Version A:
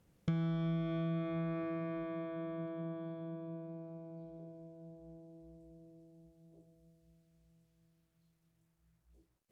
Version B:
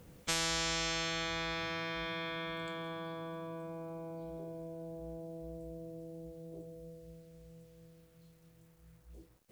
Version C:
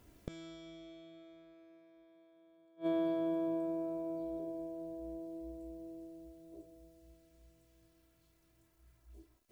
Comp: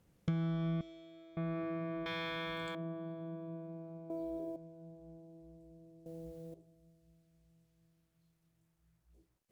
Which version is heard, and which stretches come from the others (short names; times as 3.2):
A
0.81–1.37 from C
2.06–2.75 from B
4.1–4.56 from C
6.06–6.54 from B